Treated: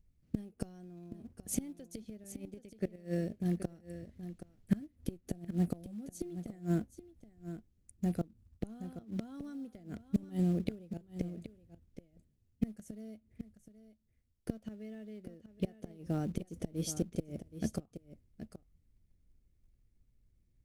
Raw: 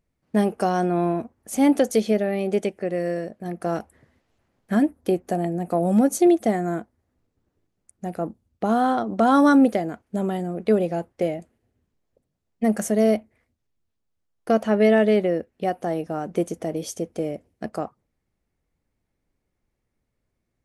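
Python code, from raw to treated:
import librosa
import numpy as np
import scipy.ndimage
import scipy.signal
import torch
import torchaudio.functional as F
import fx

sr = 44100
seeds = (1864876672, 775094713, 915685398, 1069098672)

p1 = fx.gate_flip(x, sr, shuts_db=-16.0, range_db=-25)
p2 = fx.tone_stack(p1, sr, knobs='10-0-1')
p3 = fx.quant_float(p2, sr, bits=2)
p4 = p2 + (p3 * librosa.db_to_amplitude(-9.5))
p5 = p4 + 10.0 ** (-12.0 / 20.0) * np.pad(p4, (int(774 * sr / 1000.0), 0))[:len(p4)]
y = p5 * librosa.db_to_amplitude(13.5)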